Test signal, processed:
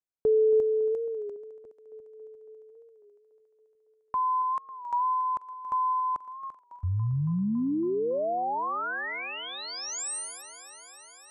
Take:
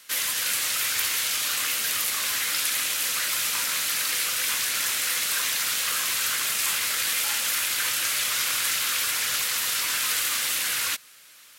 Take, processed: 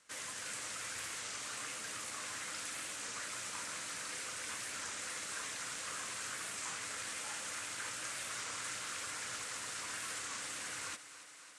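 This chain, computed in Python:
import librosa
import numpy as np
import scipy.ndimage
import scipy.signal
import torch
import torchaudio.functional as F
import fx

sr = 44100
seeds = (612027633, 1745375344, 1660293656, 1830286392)

y = scipy.signal.sosfilt(scipy.signal.butter(6, 8800.0, 'lowpass', fs=sr, output='sos'), x)
y = fx.peak_eq(y, sr, hz=3600.0, db=-12.5, octaves=2.2)
y = fx.echo_thinned(y, sr, ms=278, feedback_pct=78, hz=170.0, wet_db=-14.5)
y = fx.record_warp(y, sr, rpm=33.33, depth_cents=100.0)
y = y * 10.0 ** (-7.5 / 20.0)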